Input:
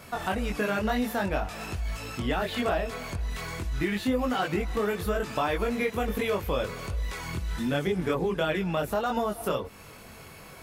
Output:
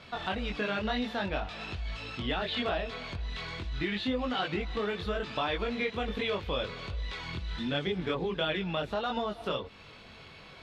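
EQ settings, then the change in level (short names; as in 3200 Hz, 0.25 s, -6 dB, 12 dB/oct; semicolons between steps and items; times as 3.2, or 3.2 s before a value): synth low-pass 3700 Hz, resonance Q 2.9; -5.0 dB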